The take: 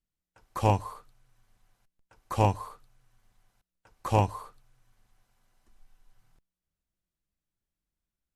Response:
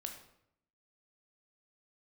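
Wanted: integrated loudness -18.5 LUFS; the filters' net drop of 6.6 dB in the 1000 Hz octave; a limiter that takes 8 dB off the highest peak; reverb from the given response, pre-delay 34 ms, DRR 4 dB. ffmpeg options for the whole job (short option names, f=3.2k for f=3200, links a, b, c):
-filter_complex "[0:a]equalizer=f=1k:t=o:g=-8.5,alimiter=limit=-20.5dB:level=0:latency=1,asplit=2[a][b];[1:a]atrim=start_sample=2205,adelay=34[c];[b][c]afir=irnorm=-1:irlink=0,volume=-1.5dB[d];[a][d]amix=inputs=2:normalize=0,volume=18.5dB"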